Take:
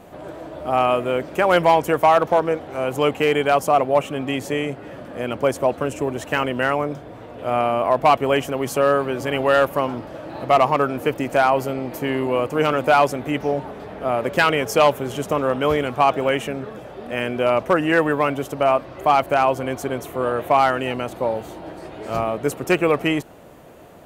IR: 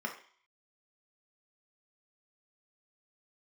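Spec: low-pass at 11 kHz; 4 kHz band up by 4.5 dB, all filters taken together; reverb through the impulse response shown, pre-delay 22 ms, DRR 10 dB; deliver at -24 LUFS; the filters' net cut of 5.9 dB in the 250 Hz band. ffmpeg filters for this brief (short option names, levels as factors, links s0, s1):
-filter_complex "[0:a]lowpass=11000,equalizer=f=250:t=o:g=-8,equalizer=f=4000:t=o:g=7,asplit=2[s0][s1];[1:a]atrim=start_sample=2205,adelay=22[s2];[s1][s2]afir=irnorm=-1:irlink=0,volume=0.211[s3];[s0][s3]amix=inputs=2:normalize=0,volume=0.668"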